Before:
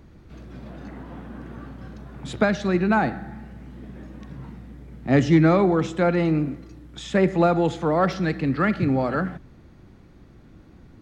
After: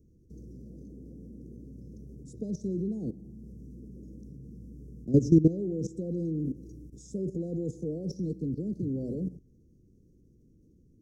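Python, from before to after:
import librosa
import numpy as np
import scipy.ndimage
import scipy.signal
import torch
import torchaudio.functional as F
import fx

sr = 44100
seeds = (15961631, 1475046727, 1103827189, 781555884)

y = fx.level_steps(x, sr, step_db=15)
y = scipy.signal.sosfilt(scipy.signal.cheby1(4, 1.0, [470.0, 5700.0], 'bandstop', fs=sr, output='sos'), y)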